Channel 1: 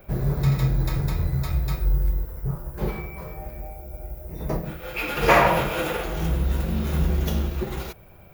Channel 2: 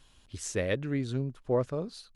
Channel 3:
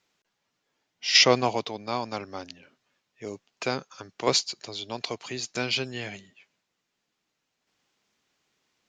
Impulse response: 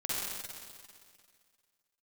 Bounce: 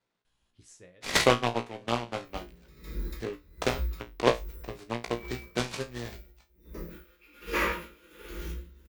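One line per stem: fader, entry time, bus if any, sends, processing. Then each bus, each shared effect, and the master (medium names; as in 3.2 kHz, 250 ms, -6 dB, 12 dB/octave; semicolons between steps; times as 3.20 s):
-0.5 dB, 2.25 s, no send, static phaser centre 300 Hz, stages 4; logarithmic tremolo 1.3 Hz, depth 23 dB
-10.0 dB, 0.25 s, no send, auto duck -17 dB, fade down 0.30 s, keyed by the third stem
+1.0 dB, 0.00 s, no send, Chebyshev low-pass 2.2 kHz, order 3; transient shaper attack +9 dB, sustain -6 dB; delay time shaken by noise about 1.7 kHz, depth 0.091 ms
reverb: none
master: feedback comb 59 Hz, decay 0.22 s, harmonics all, mix 90%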